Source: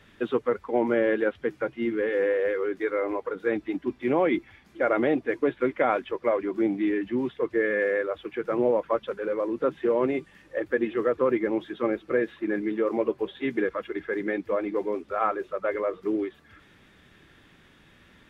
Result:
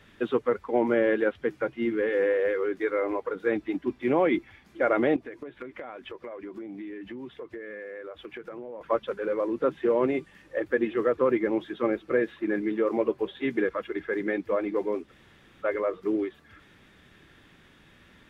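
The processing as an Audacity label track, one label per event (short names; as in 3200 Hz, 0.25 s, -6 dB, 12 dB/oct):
5.160000	8.810000	compressor 16:1, threshold -35 dBFS
15.090000	15.630000	room tone, crossfade 0.06 s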